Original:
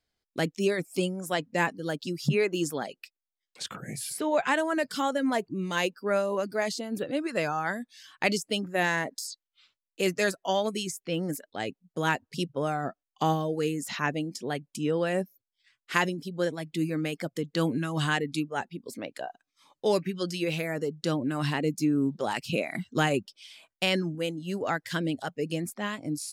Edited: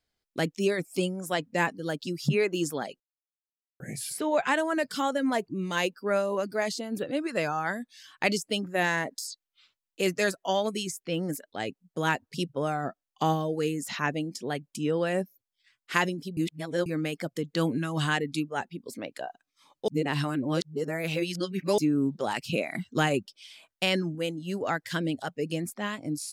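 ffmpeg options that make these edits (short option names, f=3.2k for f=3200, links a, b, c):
-filter_complex "[0:a]asplit=7[a][b][c][d][e][f][g];[a]atrim=end=3,asetpts=PTS-STARTPTS,afade=t=out:st=2.996:d=0.004:c=hsin[h];[b]atrim=start=3:end=3.8,asetpts=PTS-STARTPTS,volume=0[i];[c]atrim=start=3.8:end=16.372,asetpts=PTS-STARTPTS,afade=t=in:d=0.004:c=hsin[j];[d]atrim=start=16.368:end=16.862,asetpts=PTS-STARTPTS,areverse[k];[e]atrim=start=16.858:end=19.882[l];[f]atrim=start=19.878:end=21.782,asetpts=PTS-STARTPTS,areverse[m];[g]atrim=start=21.778[n];[h][i][j]concat=n=3:v=0:a=1[o];[o][k]acrossfade=d=0.004:c1=hsin:c2=hsin[p];[p][l]acrossfade=d=0.004:c1=hsin:c2=hsin[q];[q][m]acrossfade=d=0.004:c1=hsin:c2=hsin[r];[r][n]acrossfade=d=0.004:c1=hsin:c2=hsin"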